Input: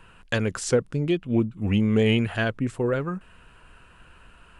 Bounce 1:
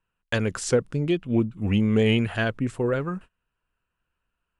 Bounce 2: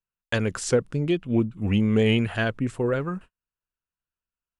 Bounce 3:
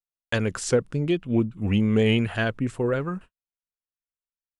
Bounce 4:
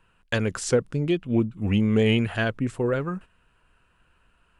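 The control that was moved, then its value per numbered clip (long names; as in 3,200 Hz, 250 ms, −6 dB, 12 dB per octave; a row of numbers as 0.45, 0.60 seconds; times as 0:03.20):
noise gate, range: −29, −45, −58, −12 decibels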